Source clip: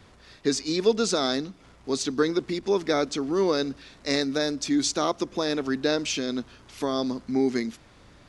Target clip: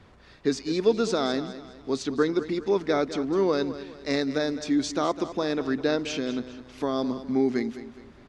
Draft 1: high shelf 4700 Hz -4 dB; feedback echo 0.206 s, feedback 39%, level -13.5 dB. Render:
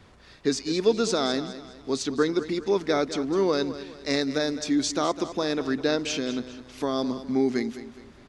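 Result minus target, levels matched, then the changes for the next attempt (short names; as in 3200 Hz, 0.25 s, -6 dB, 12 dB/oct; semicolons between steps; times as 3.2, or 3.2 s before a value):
8000 Hz band +5.5 dB
change: high shelf 4700 Hz -13 dB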